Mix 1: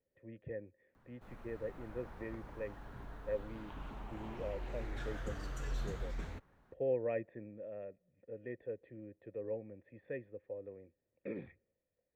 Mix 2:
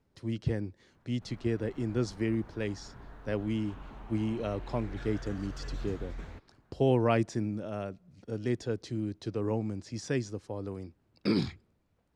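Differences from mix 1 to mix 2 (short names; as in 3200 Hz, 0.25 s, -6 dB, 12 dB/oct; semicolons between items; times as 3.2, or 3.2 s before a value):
speech: remove vocal tract filter e; master: add high shelf 10000 Hz -9.5 dB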